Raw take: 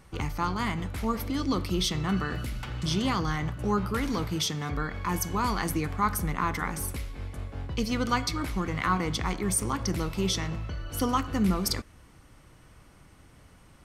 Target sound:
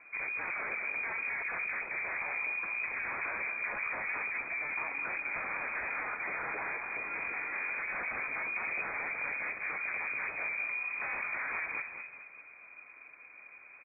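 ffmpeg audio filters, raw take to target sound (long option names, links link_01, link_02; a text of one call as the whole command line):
ffmpeg -i in.wav -filter_complex "[0:a]aeval=exprs='0.0316*(abs(mod(val(0)/0.0316+3,4)-2)-1)':channel_layout=same,asettb=1/sr,asplit=3[link_01][link_02][link_03];[link_01]atrim=end=5.634[link_04];[link_02]atrim=start=5.63:end=8.02,asetpts=PTS-STARTPTS,afade=type=in:duration=0.004:curve=qsin,afade=type=out:start_time=2.386:duration=0.004:curve=qsin,asplit=2[link_05][link_06];[link_06]highpass=frequency=720:poles=1,volume=29dB,asoftclip=type=tanh:threshold=-30dB[link_07];[link_05][link_07]amix=inputs=2:normalize=0,lowpass=frequency=1900:poles=1,volume=-6dB[link_08];[link_03]atrim=start=8.016[link_09];[link_04][link_08]acrossfade=duration=0.004:curve1=hsin:curve2=qsin[link_10];[link_10][link_09]acrossfade=duration=0.004:curve1=qsin:curve2=hsin,volume=34dB,asoftclip=hard,volume=-34dB,asplit=6[link_11][link_12][link_13][link_14][link_15][link_16];[link_12]adelay=209,afreqshift=-46,volume=-7.5dB[link_17];[link_13]adelay=418,afreqshift=-92,volume=-15dB[link_18];[link_14]adelay=627,afreqshift=-138,volume=-22.6dB[link_19];[link_15]adelay=836,afreqshift=-184,volume=-30.1dB[link_20];[link_16]adelay=1045,afreqshift=-230,volume=-37.6dB[link_21];[link_11][link_17][link_18][link_19][link_20][link_21]amix=inputs=6:normalize=0,lowpass=frequency=2100:width_type=q:width=0.5098,lowpass=frequency=2100:width_type=q:width=0.6013,lowpass=frequency=2100:width_type=q:width=0.9,lowpass=frequency=2100:width_type=q:width=2.563,afreqshift=-2500" out.wav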